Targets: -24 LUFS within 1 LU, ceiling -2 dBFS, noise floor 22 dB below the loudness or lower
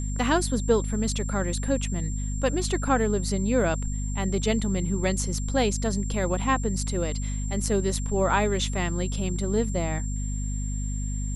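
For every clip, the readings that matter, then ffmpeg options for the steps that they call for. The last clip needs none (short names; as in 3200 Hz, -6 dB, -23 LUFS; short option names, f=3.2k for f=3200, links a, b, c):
hum 50 Hz; harmonics up to 250 Hz; hum level -27 dBFS; steady tone 7400 Hz; tone level -39 dBFS; loudness -26.5 LUFS; peak -8.0 dBFS; loudness target -24.0 LUFS
-> -af "bandreject=f=50:t=h:w=4,bandreject=f=100:t=h:w=4,bandreject=f=150:t=h:w=4,bandreject=f=200:t=h:w=4,bandreject=f=250:t=h:w=4"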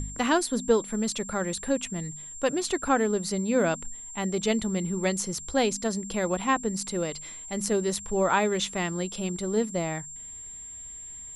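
hum none; steady tone 7400 Hz; tone level -39 dBFS
-> -af "bandreject=f=7.4k:w=30"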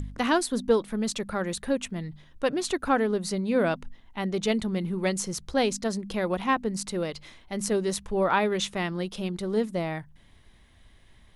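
steady tone none; loudness -28.0 LUFS; peak -10.5 dBFS; loudness target -24.0 LUFS
-> -af "volume=4dB"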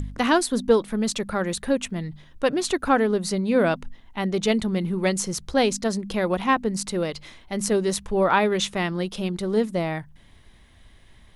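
loudness -24.0 LUFS; peak -6.5 dBFS; noise floor -52 dBFS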